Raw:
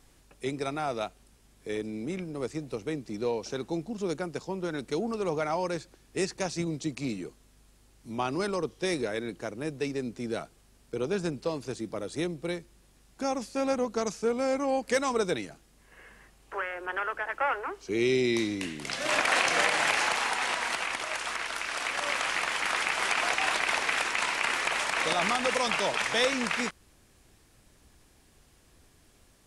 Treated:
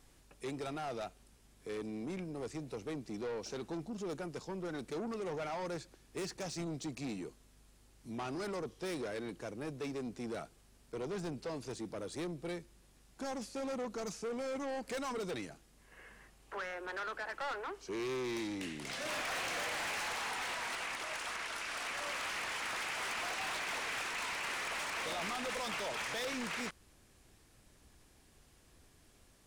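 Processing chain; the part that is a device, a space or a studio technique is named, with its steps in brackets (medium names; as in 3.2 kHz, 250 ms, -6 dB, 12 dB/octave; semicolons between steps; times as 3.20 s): saturation between pre-emphasis and de-emphasis (treble shelf 8.6 kHz +6 dB; saturation -32 dBFS, distortion -7 dB; treble shelf 8.6 kHz -6 dB); trim -3.5 dB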